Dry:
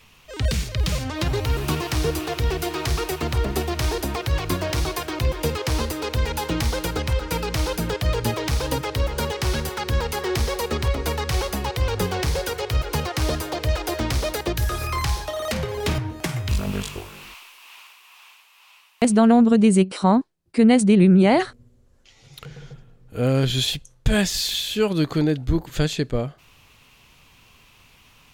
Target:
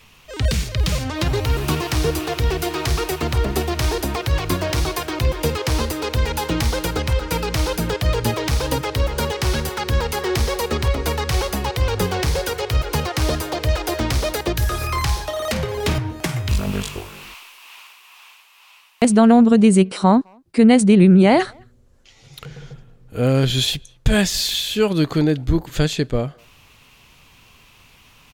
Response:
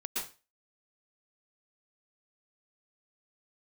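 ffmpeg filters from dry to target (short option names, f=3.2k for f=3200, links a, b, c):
-filter_complex "[0:a]asplit=2[a][b];[b]adelay=210,highpass=300,lowpass=3.4k,asoftclip=type=hard:threshold=-13.5dB,volume=-30dB[c];[a][c]amix=inputs=2:normalize=0,volume=3dB"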